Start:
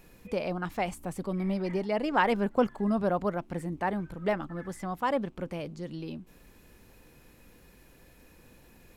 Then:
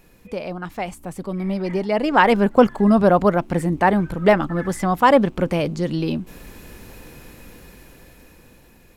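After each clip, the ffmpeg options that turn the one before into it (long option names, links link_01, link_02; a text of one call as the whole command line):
ffmpeg -i in.wav -af "dynaudnorm=framelen=470:gausssize=9:maxgain=14.5dB,volume=2.5dB" out.wav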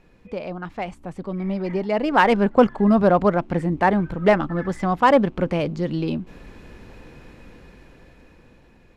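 ffmpeg -i in.wav -af "adynamicsmooth=sensitivity=1.5:basefreq=4300,volume=-1.5dB" out.wav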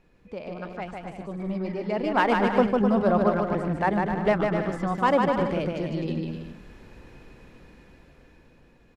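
ffmpeg -i in.wav -af "aecho=1:1:150|255|328.5|380|416:0.631|0.398|0.251|0.158|0.1,volume=-6.5dB" out.wav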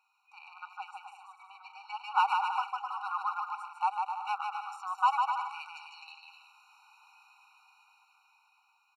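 ffmpeg -i in.wav -af "afftfilt=real='re*eq(mod(floor(b*sr/1024/750),2),1)':imag='im*eq(mod(floor(b*sr/1024/750),2),1)':win_size=1024:overlap=0.75,volume=-1.5dB" out.wav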